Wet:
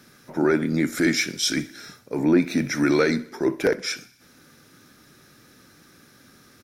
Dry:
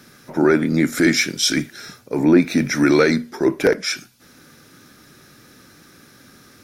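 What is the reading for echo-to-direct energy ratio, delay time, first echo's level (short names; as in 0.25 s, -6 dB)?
-19.0 dB, 64 ms, -21.0 dB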